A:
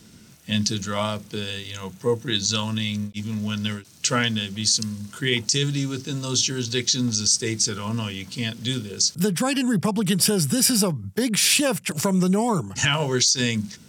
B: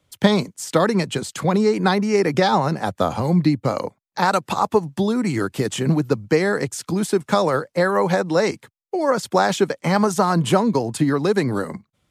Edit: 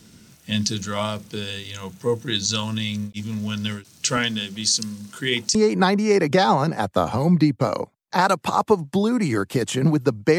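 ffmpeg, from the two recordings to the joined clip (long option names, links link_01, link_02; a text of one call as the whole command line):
ffmpeg -i cue0.wav -i cue1.wav -filter_complex "[0:a]asettb=1/sr,asplit=3[link_01][link_02][link_03];[link_01]atrim=end=4.174[link_04];[link_02]atrim=start=4.17:end=5.55,asetpts=PTS-STARTPTS,afade=type=in:duration=0.004:curve=qsin,afade=type=out:start_time=1.376:duration=0.004:curve=qsin,highpass=150[link_05];[link_03]atrim=start=5.546[link_06];[link_04][link_05]acrossfade=duration=0.004:curve1=hsin:curve2=qsin[link_07];[link_07][link_06]acrossfade=duration=0.004:curve1=qsin:curve2=hsin,apad=whole_dur=10.38,atrim=end=10.38,atrim=end=5.552[link_08];[1:a]atrim=start=1.588:end=6.42[link_09];[link_08][link_09]acrossfade=duration=0.004:curve1=hsin:curve2=hsin" out.wav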